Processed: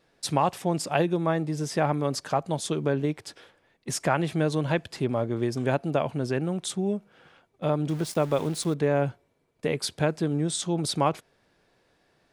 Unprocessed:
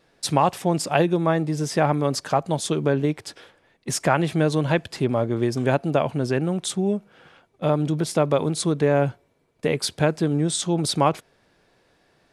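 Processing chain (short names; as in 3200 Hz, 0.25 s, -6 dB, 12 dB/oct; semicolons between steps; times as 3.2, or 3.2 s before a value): 7.89–8.74 sample gate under -34 dBFS; gain -4.5 dB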